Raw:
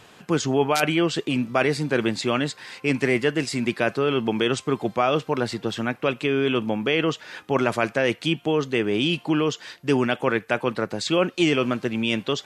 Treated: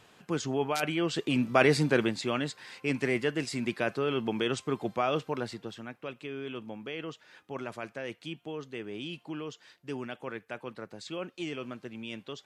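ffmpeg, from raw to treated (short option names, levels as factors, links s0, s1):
-af "afade=t=in:st=0.97:d=0.82:silence=0.354813,afade=t=out:st=1.79:d=0.35:silence=0.421697,afade=t=out:st=5.2:d=0.61:silence=0.354813"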